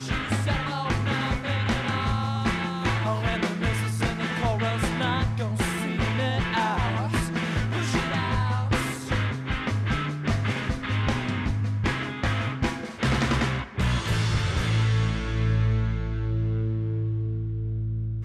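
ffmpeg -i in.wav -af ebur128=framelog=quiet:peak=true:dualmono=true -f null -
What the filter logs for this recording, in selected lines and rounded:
Integrated loudness:
  I:         -23.4 LUFS
  Threshold: -33.4 LUFS
Loudness range:
  LRA:         1.7 LU
  Threshold: -43.2 LUFS
  LRA low:   -24.1 LUFS
  LRA high:  -22.4 LUFS
True peak:
  Peak:      -13.8 dBFS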